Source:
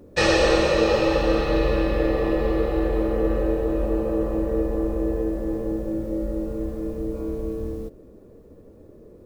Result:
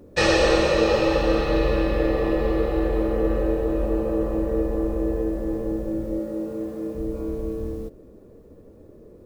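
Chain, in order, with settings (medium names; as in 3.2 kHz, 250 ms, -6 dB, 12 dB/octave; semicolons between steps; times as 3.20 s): 6.19–6.95 s: high-pass 150 Hz 12 dB/octave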